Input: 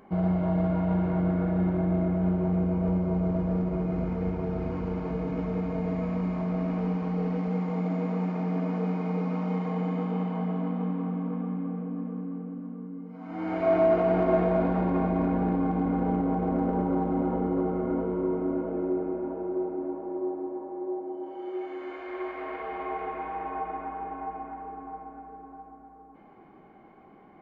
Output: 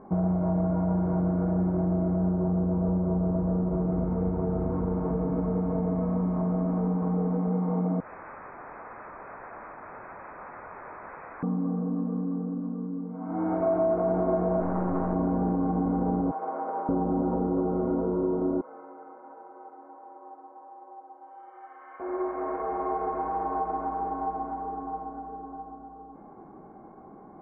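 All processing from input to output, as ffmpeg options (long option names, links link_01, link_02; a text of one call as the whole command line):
ffmpeg -i in.wav -filter_complex "[0:a]asettb=1/sr,asplit=3[link_01][link_02][link_03];[link_01]atrim=end=8.004[link_04];[link_02]atrim=start=8:end=11.43,asetpts=PTS-STARTPTS,afade=type=in:duration=0.004:curve=qsin,afade=type=out:start_time=3.426:duration=0.004:curve=qsin,flanger=delay=6.2:depth=2.5:regen=4:speed=1.7:shape=triangular,aeval=exprs='(mod(70.8*val(0)+1,2)-1)/70.8':channel_layout=same,lowpass=frequency=2200:width_type=q:width=0.5098,lowpass=frequency=2200:width_type=q:width=0.6013,lowpass=frequency=2200:width_type=q:width=0.9,lowpass=frequency=2200:width_type=q:width=2.563,afreqshift=-2600[link_05];[link_03]atrim=start=11.426[link_06];[link_04][link_05]acrossfade=duration=0.004:curve1=hsin:curve2=qsin[link_07];[link_07][link_06]acrossfade=duration=0.004:curve1=qsin:curve2=hsin,asettb=1/sr,asplit=3[link_08][link_09][link_10];[link_08]atrim=end=14.604[link_11];[link_09]atrim=start=14.6:end=15.15,asetpts=PTS-STARTPTS,afade=type=in:duration=0.004:curve=qsin,afade=type=out:start_time=0.546:duration=0.004:curve=qsin,lowpass=2700,equalizer=frequency=2000:width_type=o:width=1.7:gain=6,aeval=exprs='clip(val(0),-1,0.0251)':channel_layout=same[link_12];[link_10]atrim=start=15.146[link_13];[link_11][link_12]acrossfade=duration=0.004:curve1=hsin:curve2=qsin[link_14];[link_14][link_13]acrossfade=duration=0.004:curve1=qsin:curve2=hsin,asettb=1/sr,asplit=3[link_15][link_16][link_17];[link_15]atrim=end=16.314[link_18];[link_16]atrim=start=16.31:end=16.89,asetpts=PTS-STARTPTS,afade=type=in:duration=0.004:curve=qsin,afade=type=out:start_time=0.576:duration=0.004:curve=qsin,highpass=740,aemphasis=mode=production:type=bsi[link_19];[link_17]atrim=start=16.886[link_20];[link_18][link_19]acrossfade=duration=0.004:curve1=hsin:curve2=qsin[link_21];[link_21][link_20]acrossfade=duration=0.004:curve1=qsin:curve2=hsin,asettb=1/sr,asplit=3[link_22][link_23][link_24];[link_22]atrim=end=18.614[link_25];[link_23]atrim=start=18.61:end=22,asetpts=PTS-STARTPTS,afade=type=in:duration=0.004:curve=qsin,afade=type=out:start_time=3.386:duration=0.004:curve=qsin,highpass=1500,aecho=1:1:3.9:0.75,atrim=end_sample=149499[link_26];[link_24]atrim=start=21.996[link_27];[link_25][link_26]acrossfade=duration=0.004:curve1=hsin:curve2=qsin[link_28];[link_28][link_27]acrossfade=duration=0.004:curve1=qsin:curve2=hsin,acompressor=threshold=-30dB:ratio=3,lowpass=frequency=1300:width=0.5412,lowpass=frequency=1300:width=1.3066,volume=5.5dB" out.wav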